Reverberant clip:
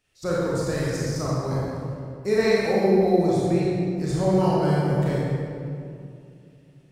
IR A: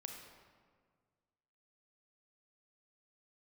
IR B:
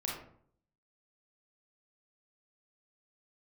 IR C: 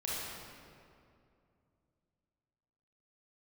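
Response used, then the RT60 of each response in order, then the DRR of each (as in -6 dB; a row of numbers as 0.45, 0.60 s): C; 1.7, 0.60, 2.5 s; 2.0, -3.5, -7.5 dB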